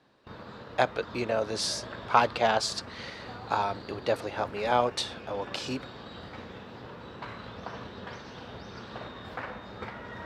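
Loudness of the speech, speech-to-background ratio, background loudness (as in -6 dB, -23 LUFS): -29.5 LUFS, 13.5 dB, -43.0 LUFS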